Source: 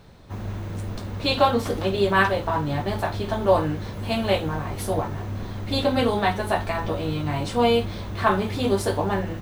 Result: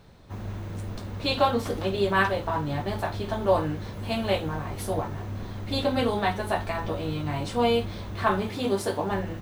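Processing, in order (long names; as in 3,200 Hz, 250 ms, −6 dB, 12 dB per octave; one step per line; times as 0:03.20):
0:08.49–0:09.11: high-pass filter 130 Hz 12 dB per octave
level −3.5 dB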